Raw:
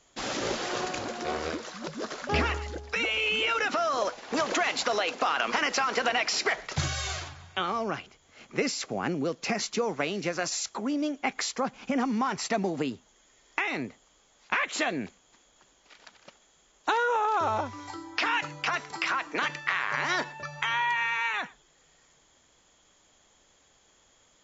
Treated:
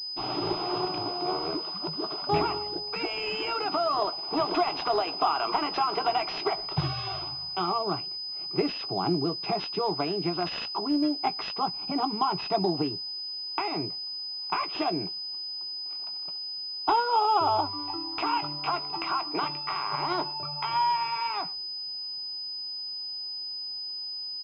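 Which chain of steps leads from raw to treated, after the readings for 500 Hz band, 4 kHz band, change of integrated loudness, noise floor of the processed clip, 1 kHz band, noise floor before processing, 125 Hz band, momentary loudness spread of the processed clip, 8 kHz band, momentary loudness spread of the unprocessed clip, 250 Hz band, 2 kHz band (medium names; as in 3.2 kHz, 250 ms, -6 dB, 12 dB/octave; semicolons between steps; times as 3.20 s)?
+0.5 dB, +5.0 dB, 0.0 dB, -36 dBFS, +3.0 dB, -64 dBFS, +1.5 dB, 7 LU, no reading, 9 LU, +1.5 dB, -10.0 dB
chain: static phaser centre 350 Hz, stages 8; doubling 17 ms -10.5 dB; class-D stage that switches slowly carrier 5 kHz; trim +4.5 dB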